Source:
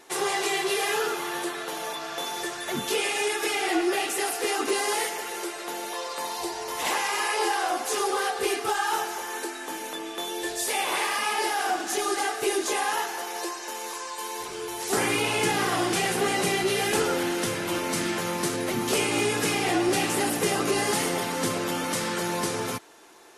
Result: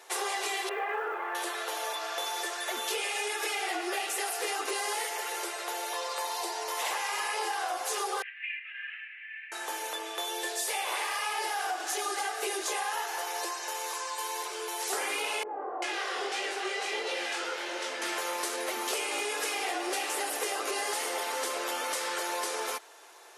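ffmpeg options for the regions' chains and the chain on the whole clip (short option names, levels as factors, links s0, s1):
-filter_complex "[0:a]asettb=1/sr,asplit=3[s0][s1][s2];[s0]atrim=end=0.694[s3];[s1]atrim=start=0.69:end=1.35,asetpts=PTS-STARTPTS,afade=t=in:d=0.004:c=qsin,afade=t=out:st=0.656:d=0.004:c=qsin,lowpass=f=2000:w=0.5412,lowpass=f=2000:w=1.3066,acrusher=bits=9:mode=log:mix=0:aa=0.000001,asplit=2[s4][s5];[s5]adelay=19,volume=0.282[s6];[s4][s6]amix=inputs=2:normalize=0,atrim=end_sample=29106[s7];[s2]atrim=start=1.346[s8];[s3][s7]acrossfade=d=0.004:c1=hsin:c2=qsin[s9];[s9][s8]acrossfade=d=0.004:c1=qsin:c2=hsin,asettb=1/sr,asplit=3[s10][s11][s12];[s10]atrim=end=8.224[s13];[s11]atrim=start=8.22:end=9.52,asetpts=PTS-STARTPTS,afade=t=in:d=0.004:c=qsin,afade=t=out:st=1.296:d=0.004:c=qsin,asuperpass=centerf=2200:order=8:qfactor=2.2,aeval=exprs='val(0)+0.000794*(sin(2*PI*50*n/s)+sin(2*PI*2*50*n/s)/2+sin(2*PI*3*50*n/s)/3+sin(2*PI*4*50*n/s)/4+sin(2*PI*5*50*n/s)/5)':c=same[s14];[s12]atrim=start=9.516[s15];[s13][s14]acrossfade=d=0.004:c1=hsin:c2=qsin[s16];[s16][s15]acrossfade=d=0.004:c1=qsin:c2=hsin,asettb=1/sr,asplit=3[s17][s18][s19];[s17]atrim=end=15.434[s20];[s18]atrim=start=15.43:end=18.02,asetpts=PTS-STARTPTS,afade=t=in:d=0.004:c=qsin,afade=t=out:st=2.586:d=0.004:c=qsin,lowpass=5900,flanger=delay=18.5:depth=7.8:speed=1.6,acrossover=split=210|940[s21][s22][s23];[s23]adelay=390[s24];[s21]adelay=750[s25];[s25][s22][s24]amix=inputs=3:normalize=0,atrim=end_sample=114219[s26];[s19]atrim=start=18.016[s27];[s20][s26]acrossfade=d=0.004:c1=hsin:c2=qsin[s28];[s28][s27]acrossfade=d=0.004:c1=qsin:c2=hsin,highpass=f=450:w=0.5412,highpass=f=450:w=1.3066,acompressor=threshold=0.0355:ratio=6"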